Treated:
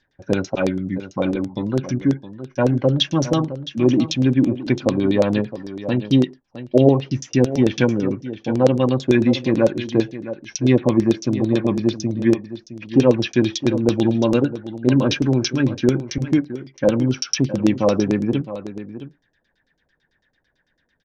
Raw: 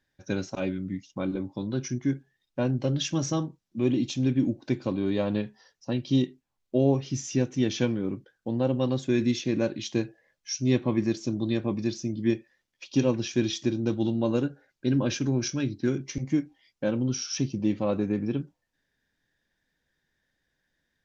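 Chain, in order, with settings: delay 664 ms -13 dB; LFO low-pass saw down 9 Hz 430–6000 Hz; trim +7.5 dB

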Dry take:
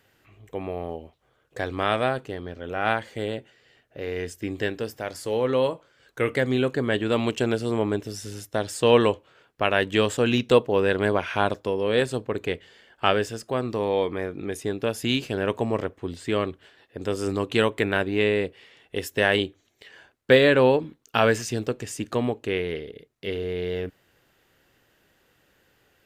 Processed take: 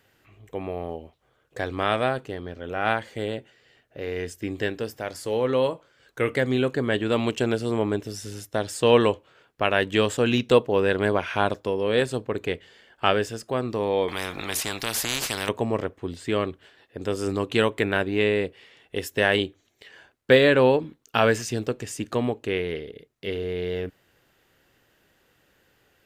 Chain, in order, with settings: 14.08–15.49 s: spectrum-flattening compressor 4:1

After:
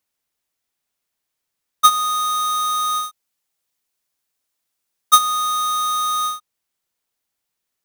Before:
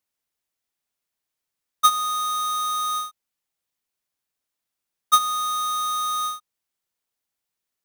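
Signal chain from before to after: 3.03–5.21 s: tone controls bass -2 dB, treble +3 dB; trim +4.5 dB

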